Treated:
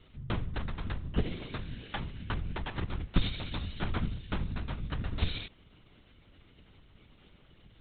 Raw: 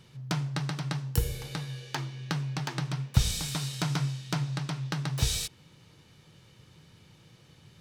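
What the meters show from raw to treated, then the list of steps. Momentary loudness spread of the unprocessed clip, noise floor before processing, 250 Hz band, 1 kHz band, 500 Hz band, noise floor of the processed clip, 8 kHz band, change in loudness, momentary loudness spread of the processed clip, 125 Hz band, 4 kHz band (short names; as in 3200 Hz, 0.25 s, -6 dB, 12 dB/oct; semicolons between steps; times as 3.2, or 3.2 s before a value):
8 LU, -58 dBFS, -2.5 dB, -3.0 dB, -0.5 dB, -61 dBFS, under -40 dB, -5.0 dB, 7 LU, -6.0 dB, -6.5 dB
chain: LPC vocoder at 8 kHz whisper; gain -2 dB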